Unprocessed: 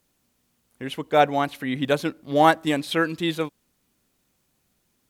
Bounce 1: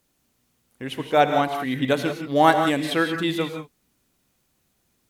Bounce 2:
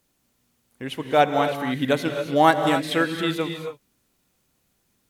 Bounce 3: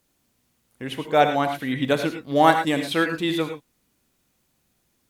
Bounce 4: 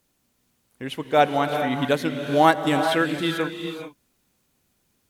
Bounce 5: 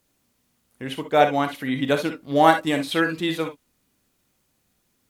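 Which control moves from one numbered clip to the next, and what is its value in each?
gated-style reverb, gate: 200 ms, 300 ms, 130 ms, 460 ms, 80 ms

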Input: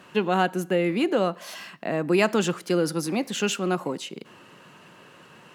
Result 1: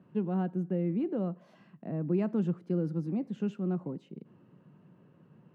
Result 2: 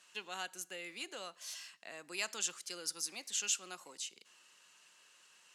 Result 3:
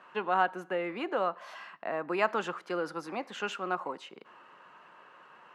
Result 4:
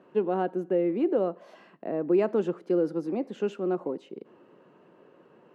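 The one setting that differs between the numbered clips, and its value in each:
band-pass filter, frequency: 150 Hz, 7 kHz, 1.1 kHz, 400 Hz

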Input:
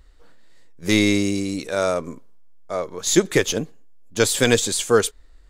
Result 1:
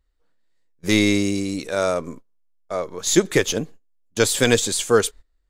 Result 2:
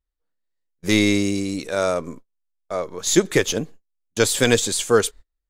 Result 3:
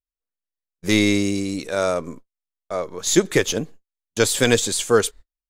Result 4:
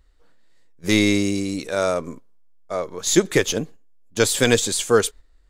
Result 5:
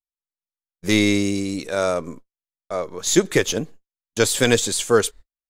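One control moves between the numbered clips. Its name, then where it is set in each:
gate, range: -19 dB, -32 dB, -46 dB, -7 dB, -59 dB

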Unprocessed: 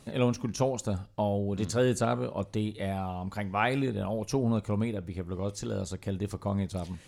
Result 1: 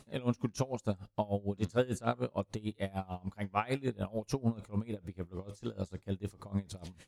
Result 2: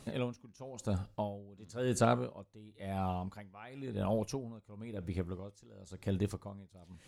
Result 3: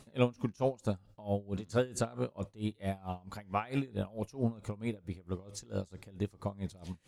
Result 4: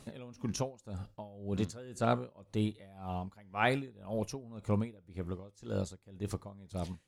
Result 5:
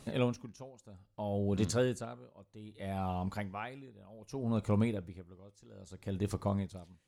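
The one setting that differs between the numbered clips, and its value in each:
logarithmic tremolo, rate: 6.7 Hz, 0.97 Hz, 4.5 Hz, 1.9 Hz, 0.63 Hz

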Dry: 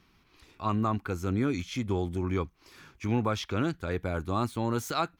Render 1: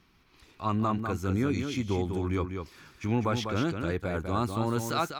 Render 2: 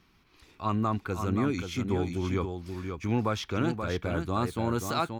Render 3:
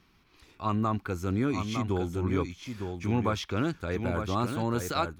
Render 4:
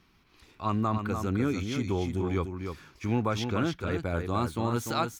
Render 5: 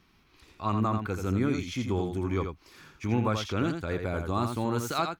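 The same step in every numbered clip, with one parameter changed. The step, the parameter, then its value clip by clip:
delay, time: 198 ms, 530 ms, 908 ms, 296 ms, 84 ms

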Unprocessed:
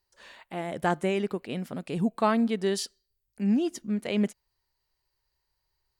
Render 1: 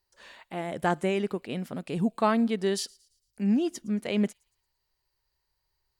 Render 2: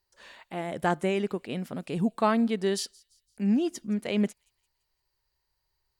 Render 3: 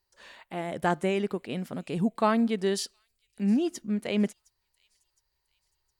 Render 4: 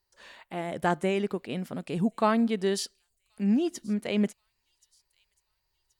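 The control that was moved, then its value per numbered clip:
feedback echo behind a high-pass, time: 113 ms, 170 ms, 713 ms, 1078 ms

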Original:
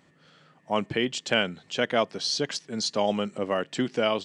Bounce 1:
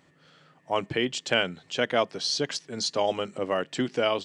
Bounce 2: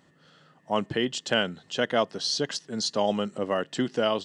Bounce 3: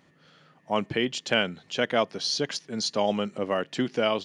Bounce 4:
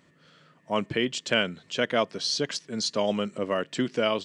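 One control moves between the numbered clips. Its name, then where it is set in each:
band-stop, frequency: 210 Hz, 2.3 kHz, 7.9 kHz, 790 Hz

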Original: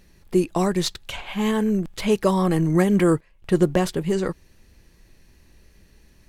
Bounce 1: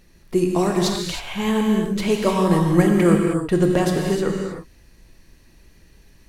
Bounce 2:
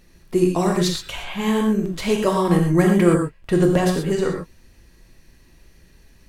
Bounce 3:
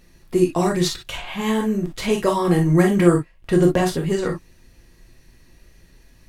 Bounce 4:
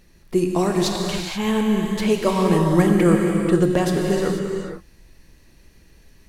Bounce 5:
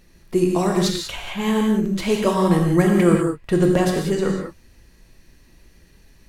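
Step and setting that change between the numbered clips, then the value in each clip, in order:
gated-style reverb, gate: 340 ms, 150 ms, 80 ms, 510 ms, 220 ms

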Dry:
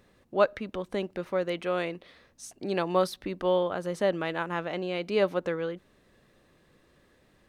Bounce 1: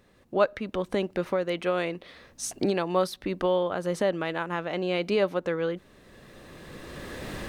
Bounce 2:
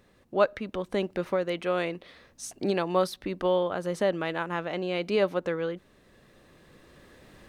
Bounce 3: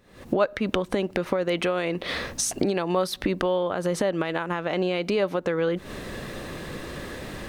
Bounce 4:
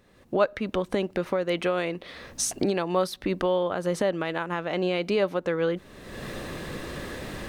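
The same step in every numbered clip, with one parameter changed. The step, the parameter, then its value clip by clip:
recorder AGC, rising by: 14 dB/s, 5.4 dB/s, 88 dB/s, 34 dB/s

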